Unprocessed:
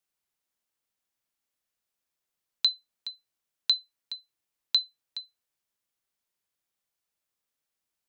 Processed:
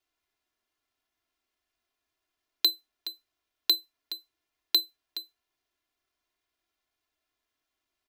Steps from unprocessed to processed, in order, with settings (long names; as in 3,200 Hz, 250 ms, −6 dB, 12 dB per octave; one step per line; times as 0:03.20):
running median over 5 samples
comb filter 2.9 ms, depth 86%
level +3 dB